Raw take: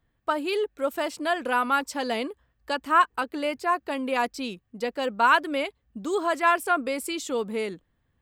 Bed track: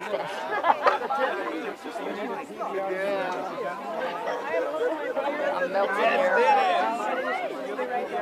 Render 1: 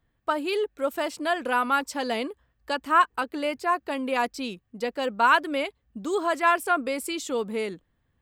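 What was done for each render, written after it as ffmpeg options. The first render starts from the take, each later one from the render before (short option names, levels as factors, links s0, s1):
-af anull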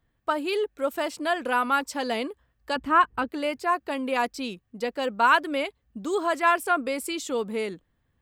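-filter_complex "[0:a]asettb=1/sr,asplit=3[s0][s1][s2];[s0]atrim=end=2.764[s3];[s1]atrim=start=2.76:end=3.29,asetpts=PTS-STARTPTS,afade=t=in:d=0.004:c=qsin,afade=t=out:st=0.526:d=0.004:c=qsin,bass=f=250:g=13,treble=f=4000:g=-9[s4];[s2]atrim=start=3.286[s5];[s3][s4]acrossfade=d=0.004:c1=hsin:c2=qsin[s6];[s6][s5]acrossfade=d=0.004:c1=qsin:c2=hsin"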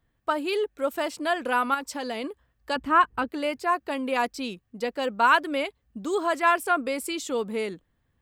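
-filter_complex "[0:a]asettb=1/sr,asplit=3[s0][s1][s2];[s0]atrim=end=1.744[s3];[s1]atrim=start=1.74:end=2.24,asetpts=PTS-STARTPTS,afade=t=in:d=0.004:c=qsin,afade=t=out:st=0.496:d=0.004:c=qsin,acompressor=threshold=0.0355:ratio=2.5:attack=3.2:release=140:knee=1:detection=peak[s4];[s2]atrim=start=2.236[s5];[s3][s4]acrossfade=d=0.004:c1=hsin:c2=qsin[s6];[s6][s5]acrossfade=d=0.004:c1=qsin:c2=hsin"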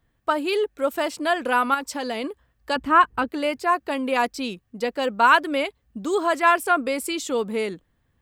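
-af "volume=1.5"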